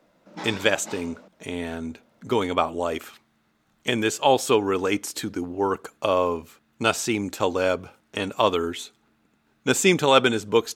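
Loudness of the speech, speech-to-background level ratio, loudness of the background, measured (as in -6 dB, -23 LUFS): -24.0 LUFS, 16.0 dB, -40.0 LUFS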